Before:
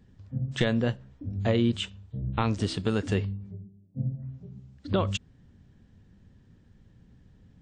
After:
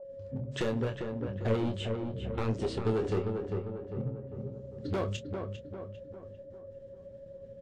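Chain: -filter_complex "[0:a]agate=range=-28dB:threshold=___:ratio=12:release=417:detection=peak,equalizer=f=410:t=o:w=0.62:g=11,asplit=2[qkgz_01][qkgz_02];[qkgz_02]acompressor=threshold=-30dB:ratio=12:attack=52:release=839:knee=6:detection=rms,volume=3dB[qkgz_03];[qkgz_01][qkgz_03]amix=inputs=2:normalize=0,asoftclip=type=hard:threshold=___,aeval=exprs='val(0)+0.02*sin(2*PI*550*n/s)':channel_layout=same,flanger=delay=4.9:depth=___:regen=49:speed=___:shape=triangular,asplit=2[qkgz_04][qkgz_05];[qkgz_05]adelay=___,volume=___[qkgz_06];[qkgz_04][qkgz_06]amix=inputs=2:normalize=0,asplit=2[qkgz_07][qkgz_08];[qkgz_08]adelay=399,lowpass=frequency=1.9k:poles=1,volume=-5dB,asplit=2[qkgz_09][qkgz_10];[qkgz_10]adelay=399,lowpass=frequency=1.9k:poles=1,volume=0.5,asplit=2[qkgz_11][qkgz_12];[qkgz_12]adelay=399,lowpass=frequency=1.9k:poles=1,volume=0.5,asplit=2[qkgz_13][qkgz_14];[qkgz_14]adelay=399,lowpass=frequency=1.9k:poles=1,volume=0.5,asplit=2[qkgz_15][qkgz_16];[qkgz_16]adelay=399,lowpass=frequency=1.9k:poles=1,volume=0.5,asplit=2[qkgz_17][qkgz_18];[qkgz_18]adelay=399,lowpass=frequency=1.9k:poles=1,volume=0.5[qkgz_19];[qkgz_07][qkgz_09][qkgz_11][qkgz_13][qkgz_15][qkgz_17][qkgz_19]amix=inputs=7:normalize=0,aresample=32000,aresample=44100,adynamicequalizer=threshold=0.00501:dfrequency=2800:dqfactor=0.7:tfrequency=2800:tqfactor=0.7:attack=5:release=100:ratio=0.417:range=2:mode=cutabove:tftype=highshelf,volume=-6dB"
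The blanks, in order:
-54dB, -17dB, 7.6, 1.5, 27, -8.5dB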